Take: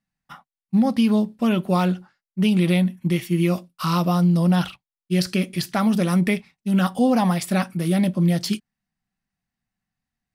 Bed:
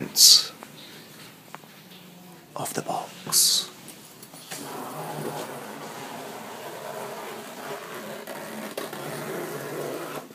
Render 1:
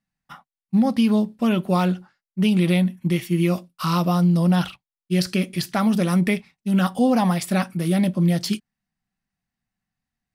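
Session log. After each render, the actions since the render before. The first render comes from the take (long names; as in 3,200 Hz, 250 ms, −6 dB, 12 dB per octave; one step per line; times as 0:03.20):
no processing that can be heard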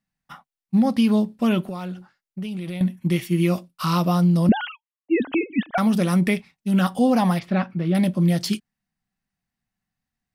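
0:01.62–0:02.81: downward compressor 10 to 1, threshold −27 dBFS
0:04.49–0:05.78: three sine waves on the formant tracks
0:07.39–0:07.95: high-frequency loss of the air 290 metres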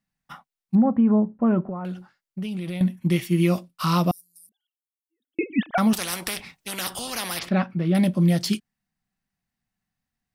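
0:00.75–0:01.85: low-pass filter 1,400 Hz 24 dB per octave
0:04.11–0:05.39: inverse Chebyshev high-pass filter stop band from 2,700 Hz, stop band 60 dB
0:05.93–0:07.49: every bin compressed towards the loudest bin 4 to 1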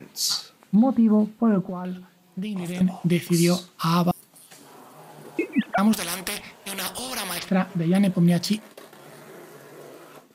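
mix in bed −11.5 dB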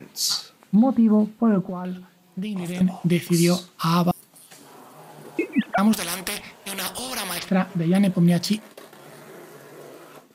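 level +1 dB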